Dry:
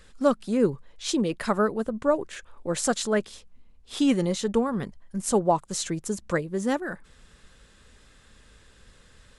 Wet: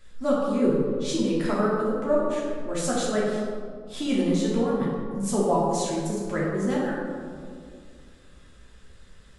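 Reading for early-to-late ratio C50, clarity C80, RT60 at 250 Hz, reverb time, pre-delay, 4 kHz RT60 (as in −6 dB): −0.5 dB, 1.5 dB, 2.6 s, 2.2 s, 3 ms, 0.95 s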